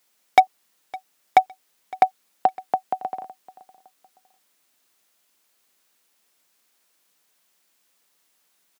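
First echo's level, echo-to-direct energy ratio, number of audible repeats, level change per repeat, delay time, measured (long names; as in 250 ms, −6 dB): −21.5 dB, −21.0 dB, 2, −10.5 dB, 560 ms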